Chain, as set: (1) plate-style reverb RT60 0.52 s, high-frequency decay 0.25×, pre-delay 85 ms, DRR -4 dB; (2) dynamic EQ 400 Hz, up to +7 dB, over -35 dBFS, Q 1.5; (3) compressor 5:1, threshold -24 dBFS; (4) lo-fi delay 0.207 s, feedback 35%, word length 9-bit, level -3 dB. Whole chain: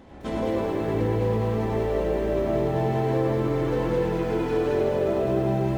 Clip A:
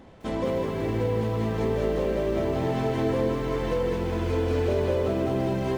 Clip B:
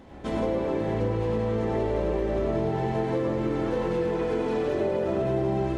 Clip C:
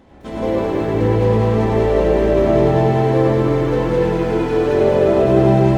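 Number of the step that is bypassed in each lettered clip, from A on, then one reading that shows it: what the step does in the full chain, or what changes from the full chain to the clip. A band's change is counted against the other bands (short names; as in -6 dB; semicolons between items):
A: 1, loudness change -1.5 LU; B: 4, 125 Hz band -2.0 dB; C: 3, mean gain reduction 8.5 dB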